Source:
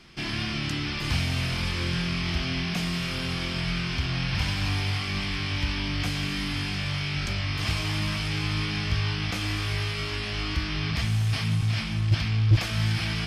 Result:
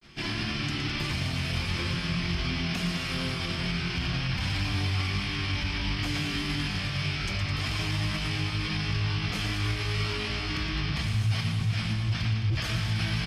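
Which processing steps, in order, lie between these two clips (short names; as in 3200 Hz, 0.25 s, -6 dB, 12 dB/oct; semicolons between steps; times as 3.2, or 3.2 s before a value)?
grains 0.115 s, spray 17 ms, pitch spread up and down by 0 st; limiter -23 dBFS, peak gain reduction 9.5 dB; tapped delay 0.115/0.21 s -7.5/-10.5 dB; gain +1.5 dB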